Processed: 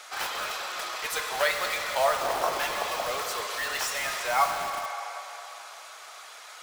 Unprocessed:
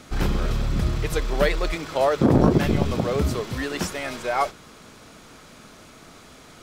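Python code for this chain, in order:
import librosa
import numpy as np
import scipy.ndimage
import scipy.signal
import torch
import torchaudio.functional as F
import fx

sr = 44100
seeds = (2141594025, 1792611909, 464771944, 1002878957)

p1 = fx.dereverb_blind(x, sr, rt60_s=0.52)
p2 = scipy.signal.sosfilt(scipy.signal.butter(4, 690.0, 'highpass', fs=sr, output='sos'), p1)
p3 = fx.rev_plate(p2, sr, seeds[0], rt60_s=3.0, hf_ratio=0.95, predelay_ms=0, drr_db=3.0)
p4 = (np.mod(10.0 ** (29.0 / 20.0) * p3 + 1.0, 2.0) - 1.0) / 10.0 ** (29.0 / 20.0)
y = p3 + (p4 * 10.0 ** (-5.0 / 20.0))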